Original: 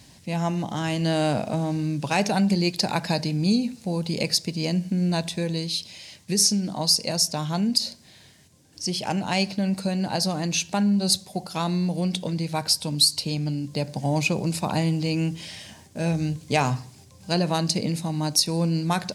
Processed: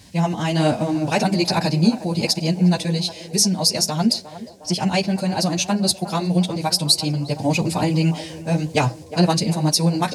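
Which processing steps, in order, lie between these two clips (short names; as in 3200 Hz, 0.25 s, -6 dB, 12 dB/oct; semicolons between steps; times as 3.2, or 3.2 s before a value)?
chorus voices 2, 0.85 Hz, delay 20 ms, depth 2.9 ms; narrowing echo 0.676 s, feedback 70%, band-pass 590 Hz, level -12 dB; time stretch by phase-locked vocoder 0.53×; gain +8.5 dB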